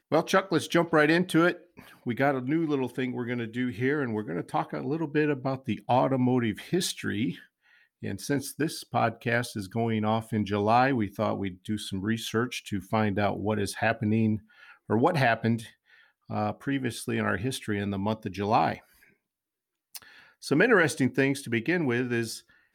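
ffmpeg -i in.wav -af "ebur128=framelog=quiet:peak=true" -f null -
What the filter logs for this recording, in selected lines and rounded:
Integrated loudness:
  I:         -27.5 LUFS
  Threshold: -38.1 LUFS
Loudness range:
  LRA:         3.4 LU
  Threshold: -48.6 LUFS
  LRA low:   -30.5 LUFS
  LRA high:  -27.1 LUFS
True peak:
  Peak:       -9.9 dBFS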